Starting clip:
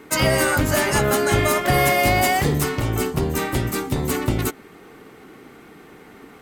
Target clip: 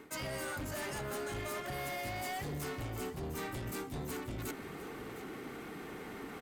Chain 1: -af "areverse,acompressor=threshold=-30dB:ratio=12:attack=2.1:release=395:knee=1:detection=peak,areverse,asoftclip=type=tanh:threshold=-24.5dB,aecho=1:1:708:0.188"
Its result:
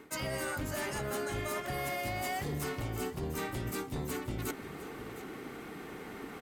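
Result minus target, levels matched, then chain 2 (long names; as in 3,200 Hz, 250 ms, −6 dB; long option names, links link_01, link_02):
soft clipping: distortion −15 dB
-af "areverse,acompressor=threshold=-30dB:ratio=12:attack=2.1:release=395:knee=1:detection=peak,areverse,asoftclip=type=tanh:threshold=-35.5dB,aecho=1:1:708:0.188"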